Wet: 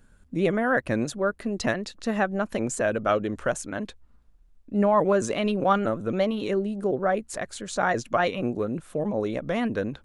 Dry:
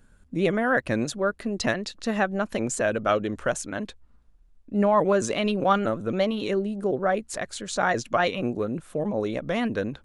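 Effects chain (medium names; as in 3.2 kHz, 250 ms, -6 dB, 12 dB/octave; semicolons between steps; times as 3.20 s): dynamic bell 4.2 kHz, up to -4 dB, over -42 dBFS, Q 0.71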